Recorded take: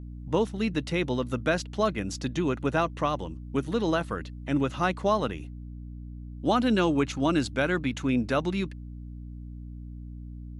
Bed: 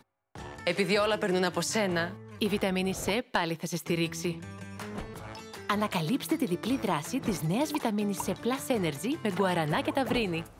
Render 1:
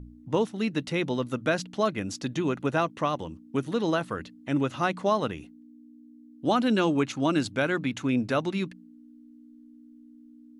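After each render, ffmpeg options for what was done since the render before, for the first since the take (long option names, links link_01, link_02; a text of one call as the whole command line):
ffmpeg -i in.wav -af "bandreject=frequency=60:width_type=h:width=4,bandreject=frequency=120:width_type=h:width=4,bandreject=frequency=180:width_type=h:width=4" out.wav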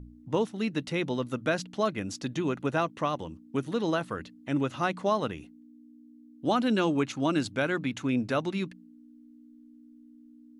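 ffmpeg -i in.wav -af "volume=-2dB" out.wav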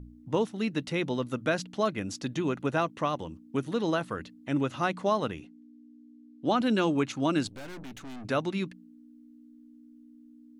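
ffmpeg -i in.wav -filter_complex "[0:a]asettb=1/sr,asplit=3[link_01][link_02][link_03];[link_01]atrim=end=5.404[link_04];[link_02]atrim=start=5.4:end=6.61,asetpts=PTS-STARTPTS,afade=type=in:duration=0.004:curve=qsin,afade=type=out:start_time=1.206:duration=0.004:curve=qsin,highpass=110,lowpass=6300[link_05];[link_03]atrim=start=6.606[link_06];[link_04][link_05]acrossfade=duration=0.004:curve1=hsin:curve2=qsin[link_07];[link_07][link_06]acrossfade=duration=0.004:curve1=qsin:curve2=hsin,asettb=1/sr,asplit=3[link_08][link_09][link_10];[link_08]atrim=end=7.474[link_11];[link_09]atrim=start=7.47:end=8.25,asetpts=PTS-STARTPTS,afade=type=in:duration=0.004:curve=qsin,afade=type=out:start_time=0.776:duration=0.004:curve=qsin,aeval=exprs='(tanh(112*val(0)+0.65)-tanh(0.65))/112':channel_layout=same[link_12];[link_10]atrim=start=8.246[link_13];[link_11][link_12]acrossfade=duration=0.004:curve1=hsin:curve2=qsin[link_14];[link_14][link_13]acrossfade=duration=0.004:curve1=qsin:curve2=hsin" out.wav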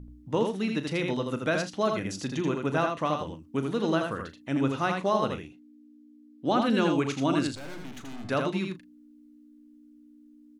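ffmpeg -i in.wav -filter_complex "[0:a]asplit=2[link_01][link_02];[link_02]adelay=37,volume=-12.5dB[link_03];[link_01][link_03]amix=inputs=2:normalize=0,asplit=2[link_04][link_05];[link_05]aecho=0:1:81:0.596[link_06];[link_04][link_06]amix=inputs=2:normalize=0" out.wav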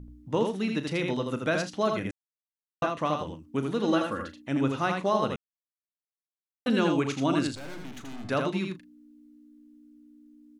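ffmpeg -i in.wav -filter_complex "[0:a]asettb=1/sr,asplit=3[link_01][link_02][link_03];[link_01]atrim=end=3.874[link_04];[link_02]atrim=start=3.87:end=4.42,asetpts=PTS-STARTPTS,afade=type=in:duration=0.004:curve=qsin,afade=type=out:start_time=0.546:duration=0.004:curve=qsin,aecho=1:1:3.6:0.6,atrim=end_sample=24255[link_05];[link_03]atrim=start=4.416[link_06];[link_04][link_05]acrossfade=duration=0.004:curve1=hsin:curve2=qsin[link_07];[link_07][link_06]acrossfade=duration=0.004:curve1=qsin:curve2=hsin,asplit=5[link_08][link_09][link_10][link_11][link_12];[link_08]atrim=end=2.11,asetpts=PTS-STARTPTS,afade=type=out:start_time=2.106:duration=0.004:curve=hsin[link_13];[link_09]atrim=start=2.11:end=2.82,asetpts=PTS-STARTPTS,volume=0[link_14];[link_10]atrim=start=2.82:end=5.36,asetpts=PTS-STARTPTS,afade=type=in:duration=0.004:curve=hsin,afade=type=out:start_time=2.536:duration=0.004:curve=hsin[link_15];[link_11]atrim=start=5.36:end=6.66,asetpts=PTS-STARTPTS,volume=0[link_16];[link_12]atrim=start=6.66,asetpts=PTS-STARTPTS,afade=type=in:duration=0.004:curve=hsin[link_17];[link_13][link_14][link_15][link_16][link_17]concat=n=5:v=0:a=1" out.wav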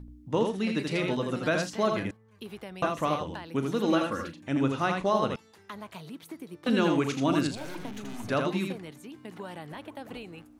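ffmpeg -i in.wav -i bed.wav -filter_complex "[1:a]volume=-13.5dB[link_01];[0:a][link_01]amix=inputs=2:normalize=0" out.wav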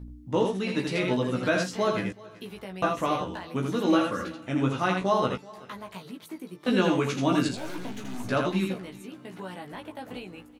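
ffmpeg -i in.wav -filter_complex "[0:a]asplit=2[link_01][link_02];[link_02]adelay=16,volume=-3dB[link_03];[link_01][link_03]amix=inputs=2:normalize=0,aecho=1:1:381|762:0.0794|0.0254" out.wav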